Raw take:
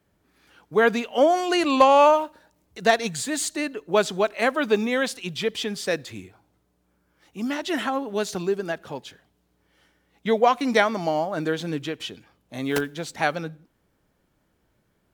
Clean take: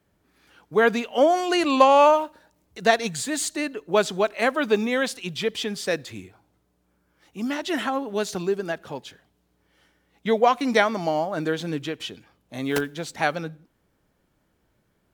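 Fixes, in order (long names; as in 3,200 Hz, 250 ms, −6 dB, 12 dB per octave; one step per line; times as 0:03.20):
clipped peaks rebuilt −5.5 dBFS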